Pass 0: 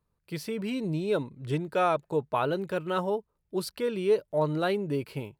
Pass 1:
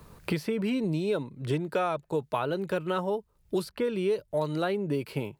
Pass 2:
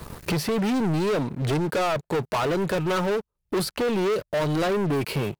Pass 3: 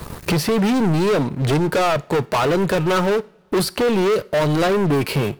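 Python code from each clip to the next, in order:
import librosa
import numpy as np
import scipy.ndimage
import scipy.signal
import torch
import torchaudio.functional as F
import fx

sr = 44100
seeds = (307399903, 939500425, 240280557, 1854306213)

y1 = fx.band_squash(x, sr, depth_pct=100)
y1 = y1 * librosa.db_to_amplitude(-1.5)
y2 = fx.leveller(y1, sr, passes=5)
y2 = y2 * librosa.db_to_amplitude(-4.5)
y3 = fx.rev_double_slope(y2, sr, seeds[0], early_s=0.46, late_s=4.6, knee_db=-28, drr_db=17.5)
y3 = y3 * librosa.db_to_amplitude(6.0)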